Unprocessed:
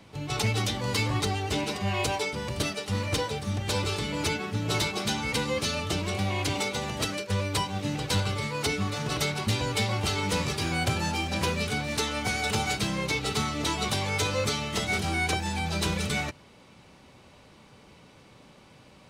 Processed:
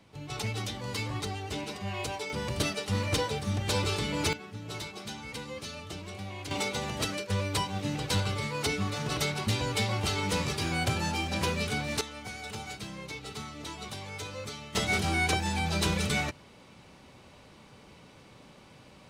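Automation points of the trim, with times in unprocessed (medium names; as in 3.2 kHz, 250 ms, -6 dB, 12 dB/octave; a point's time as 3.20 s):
-7 dB
from 2.30 s -0.5 dB
from 4.33 s -11.5 dB
from 6.51 s -2 dB
from 12.01 s -12 dB
from 14.75 s 0 dB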